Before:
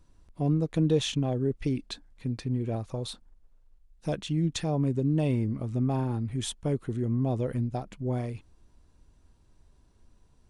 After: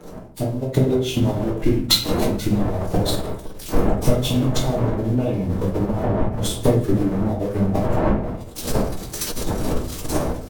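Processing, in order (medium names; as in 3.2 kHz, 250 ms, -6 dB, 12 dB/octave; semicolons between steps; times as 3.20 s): zero-crossing glitches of -26.5 dBFS; wind noise 530 Hz -30 dBFS; treble shelf 5.9 kHz -9 dB; harmonic-percussive split percussive +4 dB; dynamic bell 760 Hz, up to +8 dB, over -47 dBFS, Q 7.7; compression 8:1, threshold -36 dBFS, peak gain reduction 27 dB; transient shaper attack +10 dB, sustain -12 dB; level rider gain up to 11 dB; frequency-shifting echo 159 ms, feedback 62%, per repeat -58 Hz, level -22.5 dB; simulated room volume 65 m³, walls mixed, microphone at 1 m; formant-preserving pitch shift -3.5 st; three bands expanded up and down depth 40%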